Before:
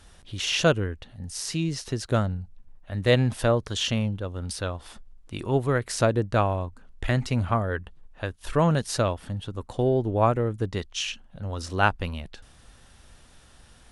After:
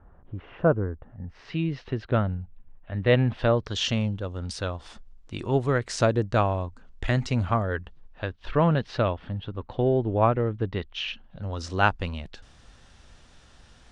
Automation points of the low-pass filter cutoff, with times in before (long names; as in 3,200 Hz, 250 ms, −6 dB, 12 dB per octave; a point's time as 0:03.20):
low-pass filter 24 dB per octave
0:01.01 1,300 Hz
0:01.54 3,100 Hz
0:03.27 3,100 Hz
0:03.93 7,400 Hz
0:07.75 7,400 Hz
0:08.57 3,600 Hz
0:11.02 3,600 Hz
0:11.68 7,400 Hz